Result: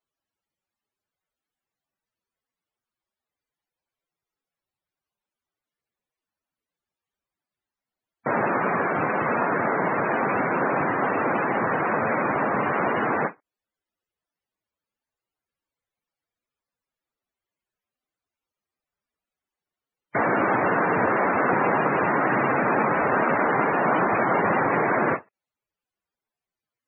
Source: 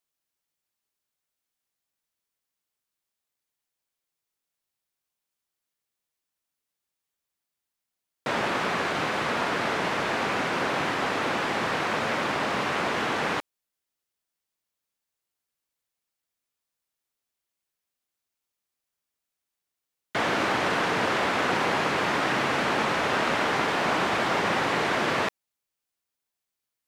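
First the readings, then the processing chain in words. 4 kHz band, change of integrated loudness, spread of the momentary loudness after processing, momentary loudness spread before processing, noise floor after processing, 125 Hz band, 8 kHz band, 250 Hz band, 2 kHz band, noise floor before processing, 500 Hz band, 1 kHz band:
under -20 dB, +3.0 dB, 3 LU, 2 LU, under -85 dBFS, +4.0 dB, under -35 dB, +4.5 dB, +1.5 dB, under -85 dBFS, +4.5 dB, +4.0 dB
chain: treble shelf 2.9 kHz -6 dB; loudest bins only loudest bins 64; endings held to a fixed fall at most 370 dB/s; trim +5 dB

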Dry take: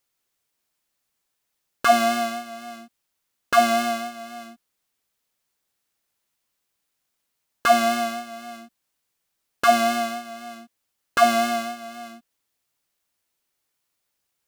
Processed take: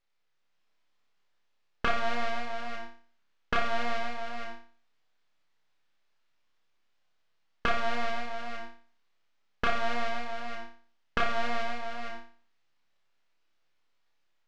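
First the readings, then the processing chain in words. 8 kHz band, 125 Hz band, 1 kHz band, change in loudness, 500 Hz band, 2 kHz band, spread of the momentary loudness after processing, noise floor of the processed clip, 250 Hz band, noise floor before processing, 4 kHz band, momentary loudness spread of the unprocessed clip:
-20.0 dB, no reading, -11.5 dB, -12.0 dB, -11.5 dB, -6.0 dB, 14 LU, -72 dBFS, -12.5 dB, -78 dBFS, -9.0 dB, 20 LU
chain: bass shelf 370 Hz -11 dB; level rider gain up to 3.5 dB; half-wave rectifier; compression 5:1, threshold -28 dBFS, peak gain reduction 14 dB; distance through air 190 m; on a send: flutter echo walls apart 5 m, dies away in 0.43 s; on the sum: trim +3.5 dB

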